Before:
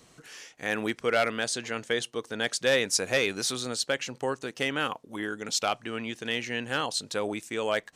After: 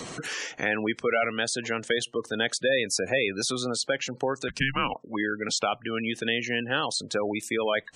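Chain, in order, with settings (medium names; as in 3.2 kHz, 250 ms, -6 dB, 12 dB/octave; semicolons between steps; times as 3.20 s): 4.48–4.95 s: frequency shift -270 Hz; spectral gate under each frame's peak -20 dB strong; three bands compressed up and down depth 70%; trim +2 dB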